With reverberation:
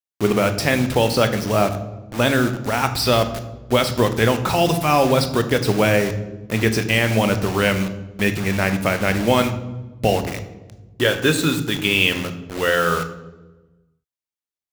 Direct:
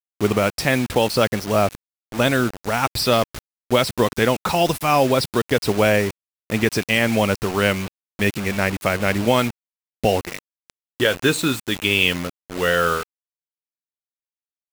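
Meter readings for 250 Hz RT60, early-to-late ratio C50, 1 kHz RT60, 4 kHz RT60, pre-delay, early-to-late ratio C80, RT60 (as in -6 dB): 1.6 s, 11.5 dB, 1.0 s, 0.80 s, 18 ms, 14.0 dB, 1.2 s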